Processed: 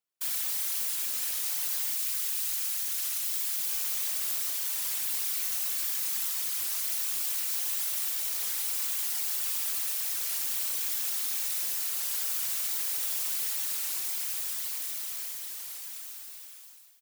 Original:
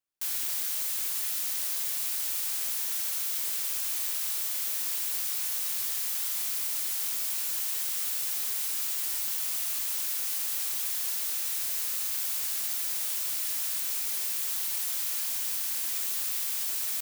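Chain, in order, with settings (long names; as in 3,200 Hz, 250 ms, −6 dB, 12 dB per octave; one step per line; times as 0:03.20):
fade-out on the ending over 3.39 s
high-pass filter 170 Hz 6 dB per octave, from 0:01.90 1,200 Hz, from 0:03.67 160 Hz
random phases in short frames
single-tap delay 518 ms −16.5 dB
wow of a warped record 33 1/3 rpm, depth 100 cents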